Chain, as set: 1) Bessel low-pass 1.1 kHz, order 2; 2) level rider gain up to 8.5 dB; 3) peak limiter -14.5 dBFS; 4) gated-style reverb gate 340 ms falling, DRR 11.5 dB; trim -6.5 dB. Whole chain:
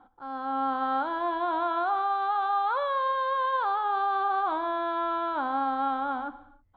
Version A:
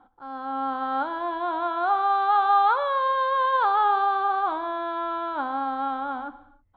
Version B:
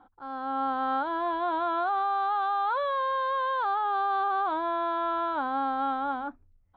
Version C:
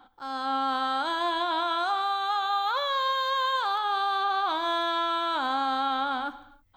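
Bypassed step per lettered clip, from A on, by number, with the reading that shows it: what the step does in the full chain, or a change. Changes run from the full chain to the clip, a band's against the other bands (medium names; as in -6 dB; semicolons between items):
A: 3, mean gain reduction 2.0 dB; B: 4, crest factor change -3.0 dB; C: 1, 4 kHz band +15.0 dB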